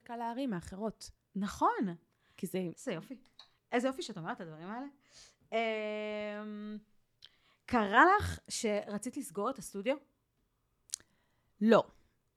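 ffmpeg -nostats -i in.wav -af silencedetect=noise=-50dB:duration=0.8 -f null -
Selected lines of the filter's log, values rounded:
silence_start: 9.98
silence_end: 10.90 | silence_duration: 0.92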